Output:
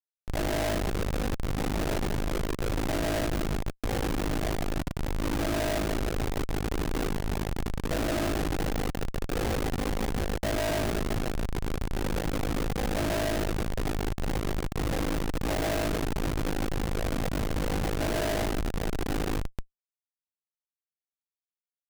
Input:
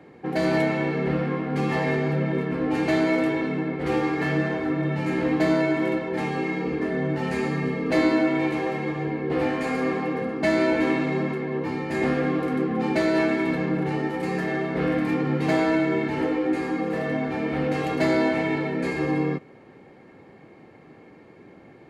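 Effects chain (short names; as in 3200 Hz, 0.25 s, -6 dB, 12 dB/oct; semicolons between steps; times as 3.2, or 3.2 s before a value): EQ curve 300 Hz 0 dB, 820 Hz +6 dB, 1300 Hz -23 dB, 3200 Hz -20 dB, 7400 Hz +4 dB; feedback echo 0.147 s, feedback 49%, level -3 dB; ring modulator 26 Hz; low shelf 300 Hz -10 dB; Schmitt trigger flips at -24.5 dBFS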